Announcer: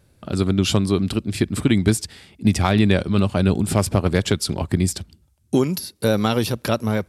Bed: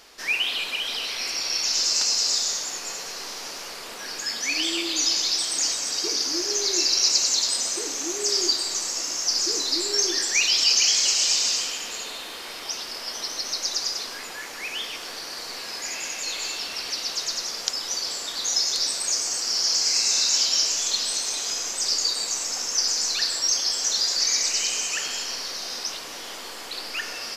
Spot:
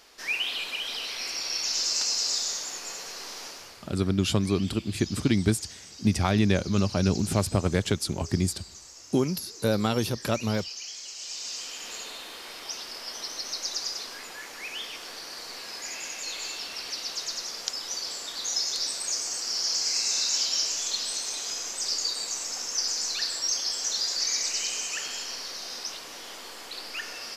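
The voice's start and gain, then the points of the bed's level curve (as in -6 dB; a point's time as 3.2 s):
3.60 s, -6.0 dB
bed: 3.44 s -4.5 dB
4.12 s -19.5 dB
11.1 s -19.5 dB
11.91 s -5 dB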